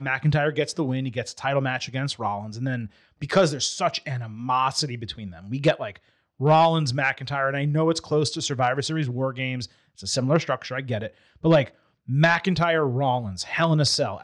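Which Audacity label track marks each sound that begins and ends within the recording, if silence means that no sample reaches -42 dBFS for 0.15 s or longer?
3.220000	5.960000	sound
6.400000	9.660000	sound
9.980000	11.090000	sound
11.430000	11.690000	sound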